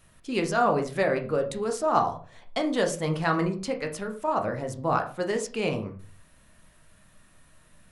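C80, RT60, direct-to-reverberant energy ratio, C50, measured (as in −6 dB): 16.0 dB, 0.40 s, 4.0 dB, 12.0 dB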